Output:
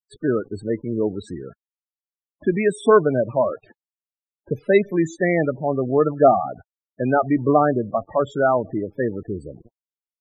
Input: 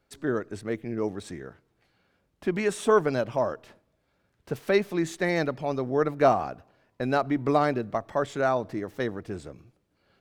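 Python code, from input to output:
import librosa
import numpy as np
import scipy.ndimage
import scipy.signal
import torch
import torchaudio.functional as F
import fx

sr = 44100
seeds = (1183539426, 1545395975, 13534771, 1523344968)

y = fx.quant_dither(x, sr, seeds[0], bits=8, dither='none')
y = fx.spec_topn(y, sr, count=16)
y = y * 10.0 ** (7.0 / 20.0)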